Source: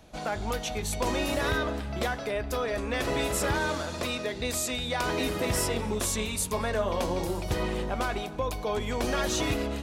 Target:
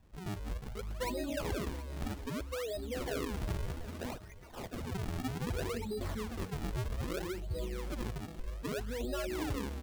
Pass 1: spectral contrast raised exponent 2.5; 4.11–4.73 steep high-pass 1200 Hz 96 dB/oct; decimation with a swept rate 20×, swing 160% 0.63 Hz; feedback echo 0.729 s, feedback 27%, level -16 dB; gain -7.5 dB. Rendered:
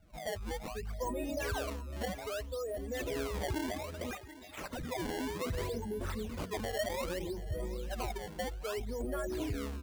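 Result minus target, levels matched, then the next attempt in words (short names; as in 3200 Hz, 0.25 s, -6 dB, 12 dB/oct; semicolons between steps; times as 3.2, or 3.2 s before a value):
decimation with a swept rate: distortion -5 dB
spectral contrast raised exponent 2.5; 4.11–4.73 steep high-pass 1200 Hz 96 dB/oct; decimation with a swept rate 49×, swing 160% 0.63 Hz; feedback echo 0.729 s, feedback 27%, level -16 dB; gain -7.5 dB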